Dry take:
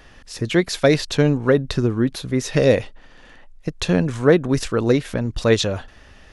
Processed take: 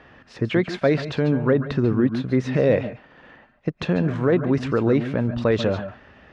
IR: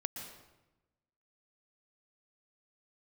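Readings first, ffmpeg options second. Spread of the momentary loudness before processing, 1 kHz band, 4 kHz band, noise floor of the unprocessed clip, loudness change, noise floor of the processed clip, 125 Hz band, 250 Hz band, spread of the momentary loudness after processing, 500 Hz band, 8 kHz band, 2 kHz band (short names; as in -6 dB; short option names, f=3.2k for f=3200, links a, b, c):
10 LU, -2.0 dB, -9.0 dB, -47 dBFS, -2.5 dB, -54 dBFS, -1.5 dB, -1.0 dB, 10 LU, -2.5 dB, under -15 dB, -4.0 dB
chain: -filter_complex "[0:a]alimiter=limit=-11dB:level=0:latency=1:release=31,highpass=100,lowpass=2.2k[a];[1:a]atrim=start_sample=2205,afade=t=out:st=0.17:d=0.01,atrim=end_sample=7938,asetrate=36162,aresample=44100[b];[a][b]afir=irnorm=-1:irlink=0,volume=2dB"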